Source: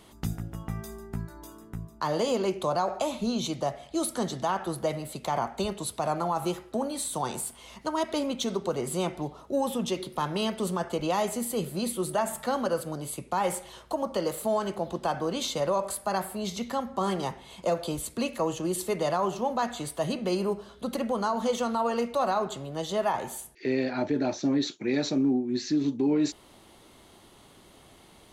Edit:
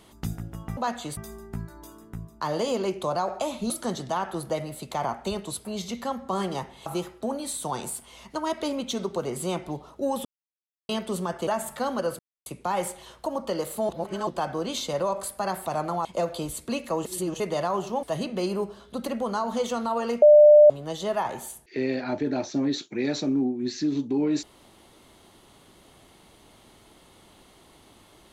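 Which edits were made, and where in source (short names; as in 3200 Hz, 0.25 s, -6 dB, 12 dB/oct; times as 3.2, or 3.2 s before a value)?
3.3–4.03 cut
5.98–6.37 swap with 16.33–17.54
9.76–10.4 mute
10.98–12.14 cut
12.86–13.13 mute
14.56–14.94 reverse
18.54–18.89 reverse
19.52–19.92 move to 0.77
22.11–22.59 bleep 597 Hz -9 dBFS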